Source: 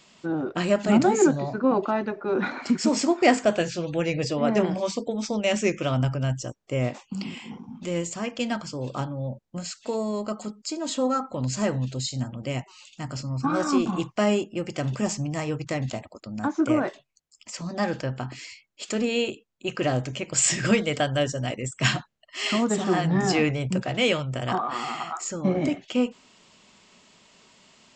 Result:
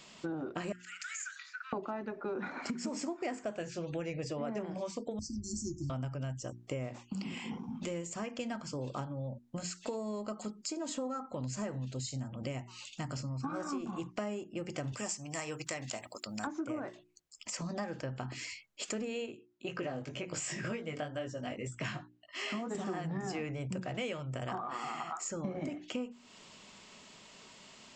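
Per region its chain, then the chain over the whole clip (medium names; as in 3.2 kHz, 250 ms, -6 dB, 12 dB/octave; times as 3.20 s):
0.72–1.73 s: steep high-pass 1.4 kHz 72 dB/octave + peaking EQ 4.1 kHz -7 dB 0.24 oct + compression, threshold -38 dBFS
5.19–5.90 s: brick-wall FIR band-stop 370–4200 Hz + resonant low shelf 130 Hz +13 dB, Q 3
14.92–16.47 s: tilt EQ +3.5 dB/octave + band-stop 6.6 kHz, Q 18
19.26–22.75 s: high-pass 62 Hz + chorus 2 Hz, delay 16.5 ms, depth 3.8 ms + distance through air 77 m
whole clip: dynamic bell 3.8 kHz, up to -7 dB, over -47 dBFS, Q 1.6; hum notches 60/120/180/240/300/360 Hz; compression 6:1, threshold -37 dBFS; trim +1 dB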